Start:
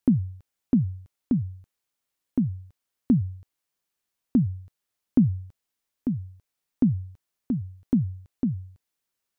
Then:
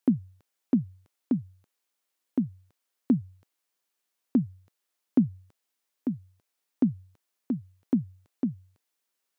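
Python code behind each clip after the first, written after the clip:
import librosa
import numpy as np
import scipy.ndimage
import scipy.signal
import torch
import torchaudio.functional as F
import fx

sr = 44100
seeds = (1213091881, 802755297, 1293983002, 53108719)

y = scipy.signal.sosfilt(scipy.signal.butter(2, 260.0, 'highpass', fs=sr, output='sos'), x)
y = y * librosa.db_to_amplitude(1.5)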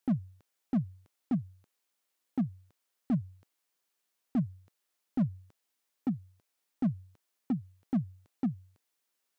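y = fx.slew_limit(x, sr, full_power_hz=14.0)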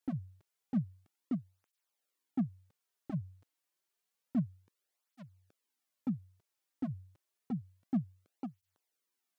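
y = fx.flanger_cancel(x, sr, hz=0.29, depth_ms=5.2)
y = y * librosa.db_to_amplitude(-2.0)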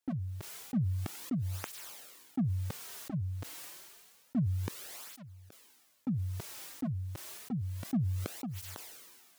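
y = fx.sustainer(x, sr, db_per_s=31.0)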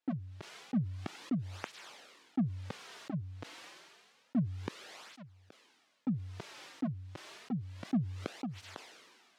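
y = fx.bandpass_edges(x, sr, low_hz=170.0, high_hz=4000.0)
y = y * librosa.db_to_amplitude(2.0)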